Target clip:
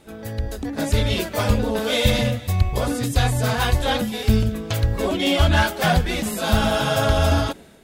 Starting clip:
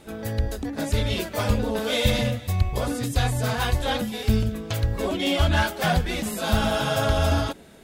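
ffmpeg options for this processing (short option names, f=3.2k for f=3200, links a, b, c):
-af "dynaudnorm=f=420:g=3:m=8dB,volume=-2.5dB"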